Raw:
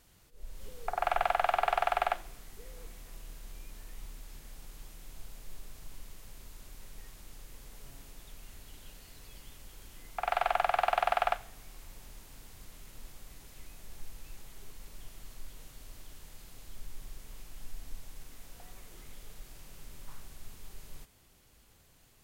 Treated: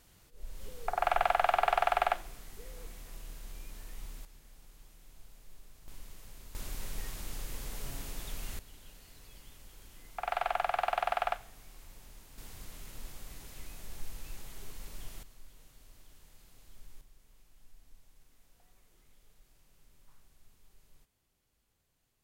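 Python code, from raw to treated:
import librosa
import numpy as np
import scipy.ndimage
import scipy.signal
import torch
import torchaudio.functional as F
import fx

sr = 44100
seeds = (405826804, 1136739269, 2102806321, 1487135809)

y = fx.gain(x, sr, db=fx.steps((0.0, 1.0), (4.25, -8.0), (5.88, -1.0), (6.55, 9.5), (8.59, -3.0), (12.38, 3.5), (15.23, -8.0), (17.01, -15.0)))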